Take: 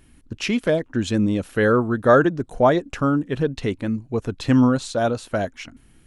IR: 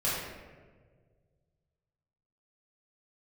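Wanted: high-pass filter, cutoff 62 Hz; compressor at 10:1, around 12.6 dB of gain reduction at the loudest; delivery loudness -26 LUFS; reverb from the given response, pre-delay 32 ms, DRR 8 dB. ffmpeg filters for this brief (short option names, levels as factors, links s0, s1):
-filter_complex "[0:a]highpass=62,acompressor=threshold=0.0708:ratio=10,asplit=2[s0][s1];[1:a]atrim=start_sample=2205,adelay=32[s2];[s1][s2]afir=irnorm=-1:irlink=0,volume=0.141[s3];[s0][s3]amix=inputs=2:normalize=0,volume=1.26"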